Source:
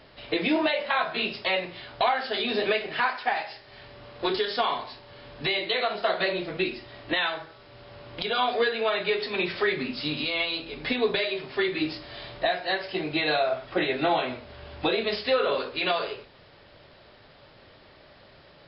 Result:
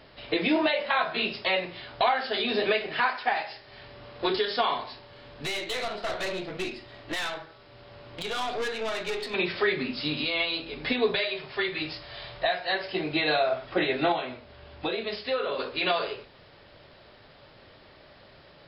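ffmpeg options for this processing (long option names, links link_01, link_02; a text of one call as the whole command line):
ffmpeg -i in.wav -filter_complex "[0:a]asettb=1/sr,asplit=3[link_01][link_02][link_03];[link_01]atrim=end=5.074[link_04];[link_02]atrim=start=5.07:end=9.34,asetpts=PTS-STARTPTS,afade=type=in:duration=0.004:curve=qsin,afade=type=out:start_time=4.266:duration=0.004:curve=qsin,aeval=exprs='(tanh(22.4*val(0)+0.5)-tanh(0.5))/22.4':channel_layout=same[link_05];[link_03]atrim=start=9.336[link_06];[link_04][link_05]acrossfade=duration=0.004:curve1=hsin:curve2=qsin[link_07];[link_07][link_06]acrossfade=duration=0.004:curve1=qsin:curve2=hsin,asettb=1/sr,asplit=3[link_08][link_09][link_10];[link_08]atrim=end=11.144[link_11];[link_09]atrim=start=11.14:end=12.75,asetpts=PTS-STARTPTS,afade=type=in:duration=0.004:curve=qsin,afade=type=out:start_time=1.606:duration=0.004:curve=qsin,equalizer=frequency=280:width=1.5:gain=-10[link_12];[link_10]atrim=start=12.746[link_13];[link_11][link_12]acrossfade=duration=0.004:curve1=hsin:curve2=qsin[link_14];[link_14][link_13]acrossfade=duration=0.004:curve1=qsin:curve2=hsin,asplit=3[link_15][link_16][link_17];[link_15]atrim=end=14.122[link_18];[link_16]atrim=start=14.118:end=15.592,asetpts=PTS-STARTPTS,volume=-5dB[link_19];[link_17]atrim=start=15.588[link_20];[link_18][link_19]acrossfade=duration=0.004:curve1=hsin:curve2=hsin[link_21];[link_21][link_20]acrossfade=duration=0.004:curve1=hsin:curve2=hsin" out.wav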